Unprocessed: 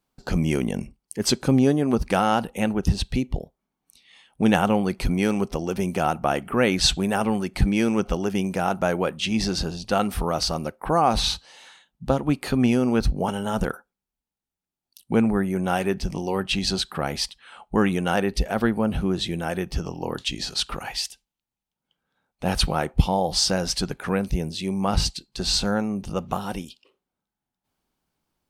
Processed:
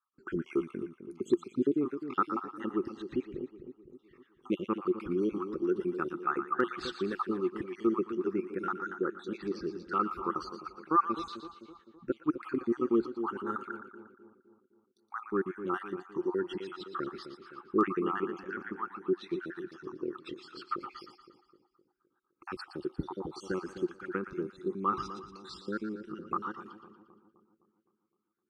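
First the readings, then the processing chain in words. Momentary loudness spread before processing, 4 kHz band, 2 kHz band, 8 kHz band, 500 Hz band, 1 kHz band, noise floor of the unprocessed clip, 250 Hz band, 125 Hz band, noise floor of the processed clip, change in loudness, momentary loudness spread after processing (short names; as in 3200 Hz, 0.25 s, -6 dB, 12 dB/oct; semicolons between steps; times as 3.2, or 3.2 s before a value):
9 LU, -23.5 dB, -11.5 dB, under -30 dB, -8.0 dB, -8.0 dB, under -85 dBFS, -10.0 dB, -20.5 dB, -77 dBFS, -10.5 dB, 15 LU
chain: random spectral dropouts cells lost 59%; double band-pass 660 Hz, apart 1.8 oct; split-band echo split 830 Hz, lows 0.257 s, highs 0.117 s, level -10 dB; hard clip -19 dBFS, distortion -41 dB; gain +4.5 dB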